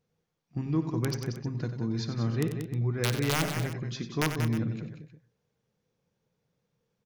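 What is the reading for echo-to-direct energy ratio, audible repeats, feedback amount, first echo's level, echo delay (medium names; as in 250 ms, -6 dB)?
-5.0 dB, 5, no regular repeats, -16.5 dB, 57 ms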